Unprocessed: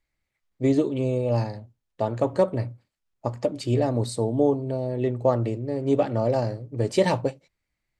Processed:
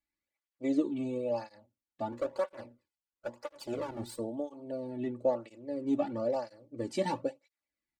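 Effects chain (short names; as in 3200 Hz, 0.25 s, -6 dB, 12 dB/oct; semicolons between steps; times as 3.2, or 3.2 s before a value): 2.12–4.19 minimum comb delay 2 ms; comb 3.5 ms, depth 59%; tape flanging out of phase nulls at 1 Hz, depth 2.1 ms; gain -8.5 dB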